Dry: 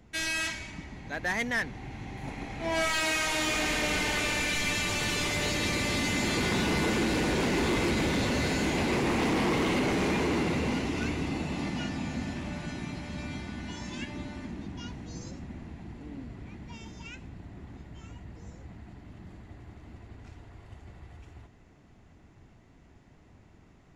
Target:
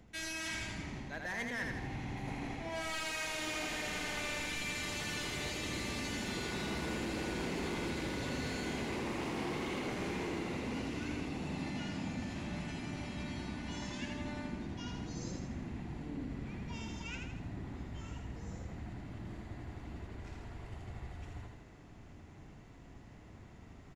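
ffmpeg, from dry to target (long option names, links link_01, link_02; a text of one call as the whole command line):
ffmpeg -i in.wav -af "areverse,acompressor=threshold=-40dB:ratio=6,areverse,aecho=1:1:81|162|243|324|405|486:0.631|0.315|0.158|0.0789|0.0394|0.0197,volume=1dB" out.wav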